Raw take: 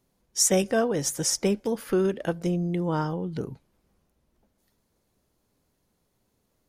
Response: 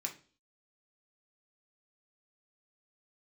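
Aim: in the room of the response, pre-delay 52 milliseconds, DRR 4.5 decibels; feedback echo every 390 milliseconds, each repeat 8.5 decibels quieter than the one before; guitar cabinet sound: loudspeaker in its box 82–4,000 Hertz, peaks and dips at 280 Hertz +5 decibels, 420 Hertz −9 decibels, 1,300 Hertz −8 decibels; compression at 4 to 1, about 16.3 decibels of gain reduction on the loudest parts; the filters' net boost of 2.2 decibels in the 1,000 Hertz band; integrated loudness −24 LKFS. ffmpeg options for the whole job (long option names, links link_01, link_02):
-filter_complex "[0:a]equalizer=frequency=1000:width_type=o:gain=5,acompressor=threshold=-38dB:ratio=4,aecho=1:1:390|780|1170|1560:0.376|0.143|0.0543|0.0206,asplit=2[link_01][link_02];[1:a]atrim=start_sample=2205,adelay=52[link_03];[link_02][link_03]afir=irnorm=-1:irlink=0,volume=-4.5dB[link_04];[link_01][link_04]amix=inputs=2:normalize=0,highpass=82,equalizer=frequency=280:width_type=q:width=4:gain=5,equalizer=frequency=420:width_type=q:width=4:gain=-9,equalizer=frequency=1300:width_type=q:width=4:gain=-8,lowpass=frequency=4000:width=0.5412,lowpass=frequency=4000:width=1.3066,volume=16dB"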